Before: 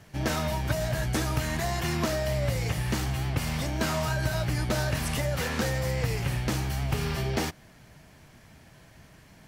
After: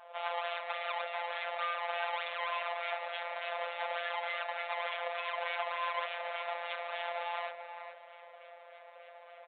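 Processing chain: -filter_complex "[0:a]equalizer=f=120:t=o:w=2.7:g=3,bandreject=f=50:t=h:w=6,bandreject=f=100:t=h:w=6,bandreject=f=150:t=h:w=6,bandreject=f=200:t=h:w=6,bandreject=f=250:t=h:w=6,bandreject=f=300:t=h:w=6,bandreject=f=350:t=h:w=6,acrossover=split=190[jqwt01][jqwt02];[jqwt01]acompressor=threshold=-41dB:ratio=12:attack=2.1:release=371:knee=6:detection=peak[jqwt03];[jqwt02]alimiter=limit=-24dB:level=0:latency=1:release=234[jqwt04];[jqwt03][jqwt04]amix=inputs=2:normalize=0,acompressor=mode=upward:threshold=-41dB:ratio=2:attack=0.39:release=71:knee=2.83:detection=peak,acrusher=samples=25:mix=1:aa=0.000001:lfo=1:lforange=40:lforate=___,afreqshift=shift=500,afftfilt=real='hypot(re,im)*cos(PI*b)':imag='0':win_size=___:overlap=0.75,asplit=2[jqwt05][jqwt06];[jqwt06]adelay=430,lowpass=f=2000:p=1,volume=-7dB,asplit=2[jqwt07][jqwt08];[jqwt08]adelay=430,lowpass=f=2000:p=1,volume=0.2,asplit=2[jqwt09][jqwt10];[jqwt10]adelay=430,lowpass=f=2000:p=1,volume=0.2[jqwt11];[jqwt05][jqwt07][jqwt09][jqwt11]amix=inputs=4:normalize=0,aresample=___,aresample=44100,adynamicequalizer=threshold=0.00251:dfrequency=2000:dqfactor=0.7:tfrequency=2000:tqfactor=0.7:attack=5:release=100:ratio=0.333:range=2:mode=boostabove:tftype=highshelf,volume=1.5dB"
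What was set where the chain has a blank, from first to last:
3.4, 1024, 8000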